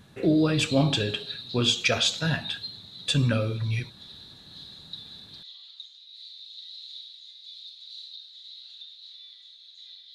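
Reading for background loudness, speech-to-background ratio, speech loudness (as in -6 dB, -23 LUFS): -41.0 LUFS, 15.5 dB, -25.5 LUFS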